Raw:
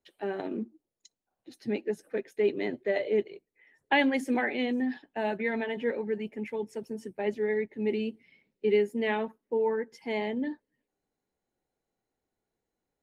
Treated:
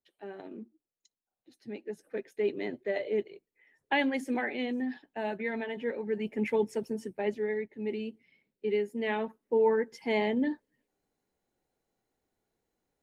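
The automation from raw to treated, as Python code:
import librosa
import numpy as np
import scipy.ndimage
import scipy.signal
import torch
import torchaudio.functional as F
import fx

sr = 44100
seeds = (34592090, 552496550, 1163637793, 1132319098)

y = fx.gain(x, sr, db=fx.line((1.72, -10.0), (2.19, -3.5), (5.98, -3.5), (6.5, 7.0), (7.67, -5.0), (8.84, -5.0), (9.65, 3.0)))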